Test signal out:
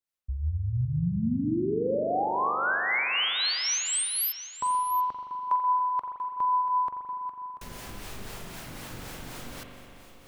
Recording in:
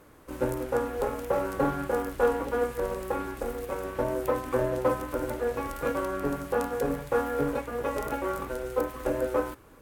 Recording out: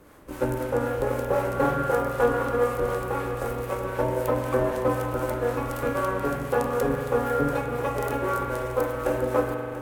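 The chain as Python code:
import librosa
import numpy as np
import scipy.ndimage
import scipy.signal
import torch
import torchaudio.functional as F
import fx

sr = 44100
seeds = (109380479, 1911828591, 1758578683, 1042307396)

y = fx.harmonic_tremolo(x, sr, hz=3.9, depth_pct=50, crossover_hz=430.0)
y = y + 10.0 ** (-13.0 / 20.0) * np.pad(y, (int(687 * sr / 1000.0), 0))[:len(y)]
y = fx.rev_spring(y, sr, rt60_s=2.8, pass_ms=(41,), chirp_ms=75, drr_db=2.5)
y = y * 10.0 ** (4.5 / 20.0)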